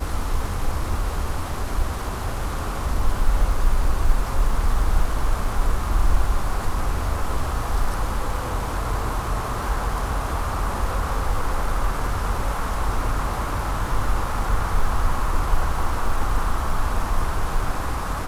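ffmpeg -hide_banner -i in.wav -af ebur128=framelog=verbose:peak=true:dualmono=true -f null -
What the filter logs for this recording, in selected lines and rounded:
Integrated loudness:
  I:         -23.3 LUFS
  Threshold: -33.3 LUFS
Loudness range:
  LRA:         1.6 LU
  Threshold: -43.1 LUFS
  LRA low:   -23.9 LUFS
  LRA high:  -22.2 LUFS
True peak:
  Peak:       -5.1 dBFS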